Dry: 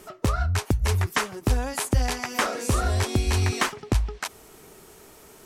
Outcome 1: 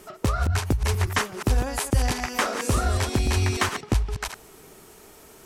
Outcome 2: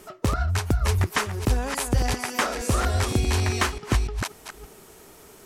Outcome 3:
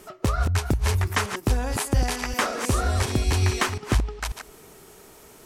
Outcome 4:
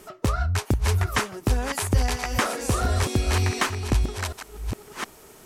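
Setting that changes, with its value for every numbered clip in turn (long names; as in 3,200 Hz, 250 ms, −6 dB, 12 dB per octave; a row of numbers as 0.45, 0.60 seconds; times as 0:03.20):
delay that plays each chunk backwards, delay time: 119, 291, 180, 721 milliseconds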